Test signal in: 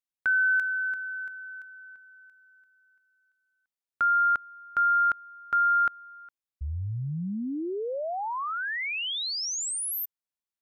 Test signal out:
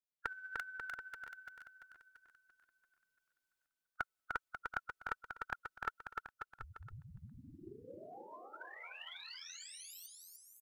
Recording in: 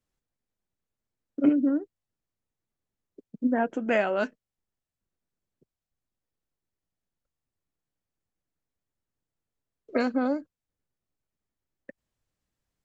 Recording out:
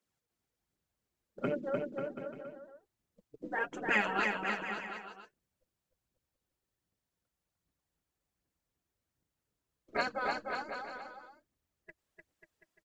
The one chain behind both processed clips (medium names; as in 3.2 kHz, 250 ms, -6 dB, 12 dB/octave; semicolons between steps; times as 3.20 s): spectral gate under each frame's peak -10 dB weak; phaser 1.3 Hz, delay 3.2 ms, feedback 49%; on a send: bouncing-ball echo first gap 300 ms, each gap 0.8×, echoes 5